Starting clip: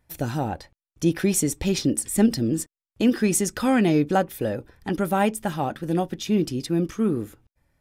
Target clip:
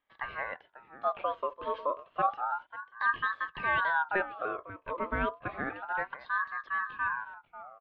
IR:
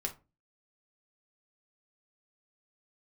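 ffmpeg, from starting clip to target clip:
-filter_complex "[0:a]highshelf=frequency=2100:gain=-9,highpass=frequency=210:width_type=q:width=0.5412,highpass=frequency=210:width_type=q:width=1.307,lowpass=frequency=2700:width_type=q:width=0.5176,lowpass=frequency=2700:width_type=q:width=0.7071,lowpass=frequency=2700:width_type=q:width=1.932,afreqshift=-52,asplit=2[link_01][link_02];[link_02]adelay=542.3,volume=-15dB,highshelf=frequency=4000:gain=-12.2[link_03];[link_01][link_03]amix=inputs=2:normalize=0,aeval=exprs='val(0)*sin(2*PI*1100*n/s+1100*0.3/0.3*sin(2*PI*0.3*n/s))':channel_layout=same,volume=-5dB"

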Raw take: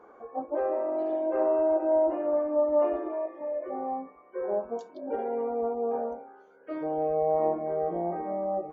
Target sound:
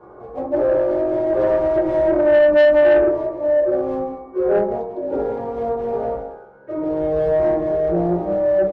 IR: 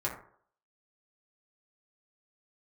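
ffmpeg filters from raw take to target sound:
-filter_complex "[0:a]asettb=1/sr,asplit=3[link_01][link_02][link_03];[link_01]atrim=end=1.094[link_04];[link_02]atrim=start=1.09:end=2.8,asetpts=PTS-STARTPTS,afade=type=in:duration=0.004:curve=qsin,afade=type=out:start_time=1.706:duration=0.004:curve=qsin,aecho=1:1:5.1:0.32,atrim=end_sample=75411[link_05];[link_03]atrim=start=2.796[link_06];[link_04][link_05]acrossfade=duration=0.004:curve1=hsin:curve2=qsin[link_07];[link_07][link_06]acrossfade=duration=0.004:curve1=qsin:curve2=hsin,asplit=2[link_08][link_09];[link_09]adelay=170,highpass=300,lowpass=3400,asoftclip=type=hard:threshold=-22.5dB,volume=-9dB[link_10];[link_08][link_10]amix=inputs=2:normalize=0,acrossover=split=180|490[link_11][link_12][link_13];[link_13]acrusher=bits=3:mode=log:mix=0:aa=0.000001[link_14];[link_11][link_12][link_14]amix=inputs=3:normalize=0,lowpass=frequency=2000:poles=1,aemphasis=mode=reproduction:type=riaa[link_15];[1:a]atrim=start_sample=2205[link_16];[link_15][link_16]afir=irnorm=-1:irlink=0,asoftclip=type=tanh:threshold=-12dB,volume=3dB"

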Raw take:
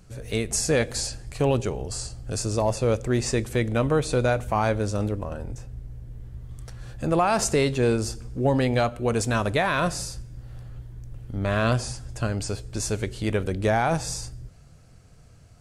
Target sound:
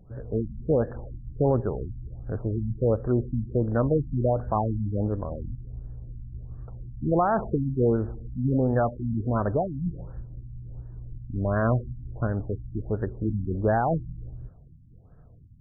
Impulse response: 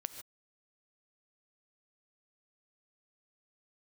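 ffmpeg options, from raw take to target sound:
-af "highshelf=frequency=2500:gain=-11.5,afftfilt=real='re*lt(b*sr/1024,280*pow(1900/280,0.5+0.5*sin(2*PI*1.4*pts/sr)))':imag='im*lt(b*sr/1024,280*pow(1900/280,0.5+0.5*sin(2*PI*1.4*pts/sr)))':win_size=1024:overlap=0.75"

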